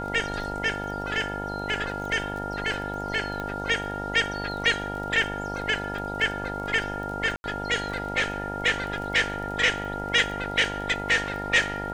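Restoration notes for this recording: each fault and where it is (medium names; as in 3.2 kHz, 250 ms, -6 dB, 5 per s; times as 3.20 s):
buzz 50 Hz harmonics 19 -34 dBFS
crackle 22 per s -34 dBFS
whine 1.4 kHz -33 dBFS
3.40 s: pop -20 dBFS
7.36–7.44 s: dropout 81 ms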